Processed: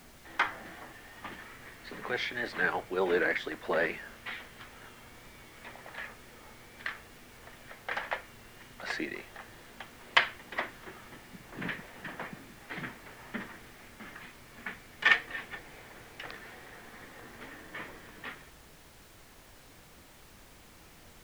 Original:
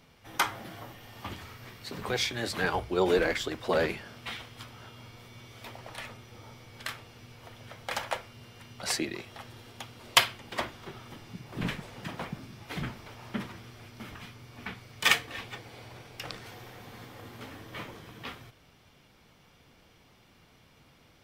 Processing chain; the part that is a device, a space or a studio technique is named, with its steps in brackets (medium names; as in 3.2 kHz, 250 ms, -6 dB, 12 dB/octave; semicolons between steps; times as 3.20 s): horn gramophone (band-pass 200–3100 Hz; peaking EQ 1.8 kHz +9 dB 0.49 oct; wow and flutter; pink noise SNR 17 dB); trim -3.5 dB